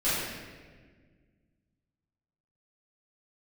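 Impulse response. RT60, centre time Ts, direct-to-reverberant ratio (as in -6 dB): 1.6 s, 0.109 s, -14.0 dB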